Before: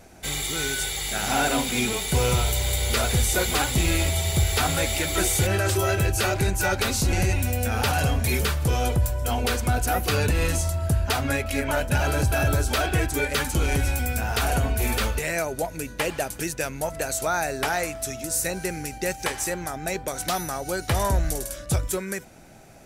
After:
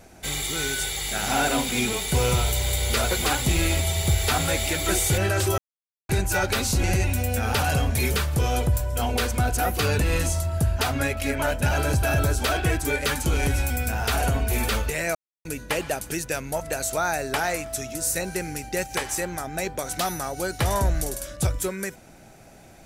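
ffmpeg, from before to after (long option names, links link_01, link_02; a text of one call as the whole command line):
ffmpeg -i in.wav -filter_complex "[0:a]asplit=6[link_01][link_02][link_03][link_04][link_05][link_06];[link_01]atrim=end=3.112[link_07];[link_02]atrim=start=3.398:end=5.87,asetpts=PTS-STARTPTS,afade=type=out:start_time=2.468:duration=0.004:curve=hsin[link_08];[link_03]atrim=start=5.87:end=6.38,asetpts=PTS-STARTPTS,volume=0[link_09];[link_04]atrim=start=6.38:end=15.44,asetpts=PTS-STARTPTS,afade=type=in:duration=0.004:curve=hsin,afade=type=out:start_time=9.056:duration=0.004:curve=hsin[link_10];[link_05]atrim=start=15.44:end=15.74,asetpts=PTS-STARTPTS,volume=0[link_11];[link_06]atrim=start=15.74,asetpts=PTS-STARTPTS,afade=type=in:duration=0.004:curve=hsin[link_12];[link_08][link_09][link_10][link_11][link_12]concat=n=5:v=0:a=1[link_13];[link_07][link_13]acrossfade=duration=0.004:curve1=hsin:curve2=hsin" out.wav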